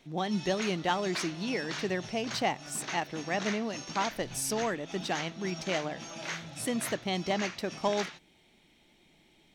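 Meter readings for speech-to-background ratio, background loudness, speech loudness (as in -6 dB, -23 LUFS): 7.0 dB, -40.0 LUFS, -33.0 LUFS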